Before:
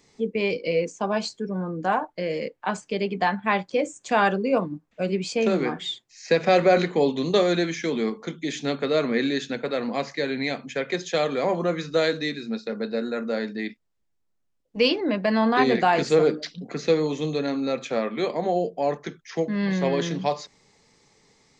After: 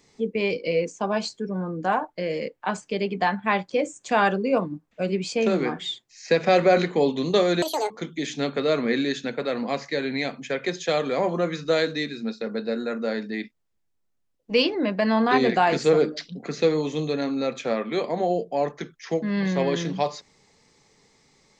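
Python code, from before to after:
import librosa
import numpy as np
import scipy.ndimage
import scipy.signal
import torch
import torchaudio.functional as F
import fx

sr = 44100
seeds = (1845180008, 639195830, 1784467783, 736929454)

y = fx.edit(x, sr, fx.speed_span(start_s=7.62, length_s=0.54, speed=1.91), tone=tone)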